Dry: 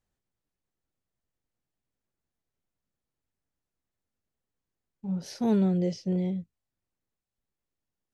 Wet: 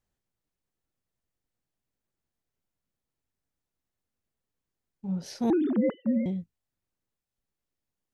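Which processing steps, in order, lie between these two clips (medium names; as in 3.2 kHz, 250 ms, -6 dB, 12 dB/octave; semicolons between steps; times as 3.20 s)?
5.50–6.26 s: formants replaced by sine waves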